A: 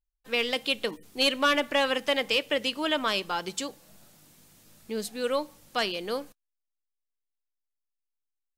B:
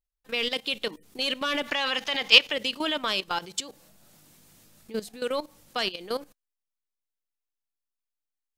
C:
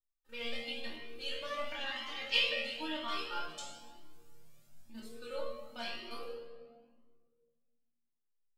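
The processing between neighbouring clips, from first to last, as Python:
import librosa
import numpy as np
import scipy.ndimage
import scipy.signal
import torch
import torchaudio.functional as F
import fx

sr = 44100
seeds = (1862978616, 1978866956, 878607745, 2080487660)

y1 = fx.spec_box(x, sr, start_s=1.68, length_s=0.84, low_hz=660.0, high_hz=7100.0, gain_db=7)
y1 = fx.dynamic_eq(y1, sr, hz=3700.0, q=1.1, threshold_db=-38.0, ratio=4.0, max_db=5)
y1 = fx.level_steps(y1, sr, step_db=15)
y1 = F.gain(torch.from_numpy(y1), 3.0).numpy()
y2 = fx.resonator_bank(y1, sr, root=39, chord='fifth', decay_s=0.38)
y2 = fx.room_shoebox(y2, sr, seeds[0], volume_m3=2100.0, walls='mixed', distance_m=2.6)
y2 = fx.comb_cascade(y2, sr, direction='rising', hz=0.99)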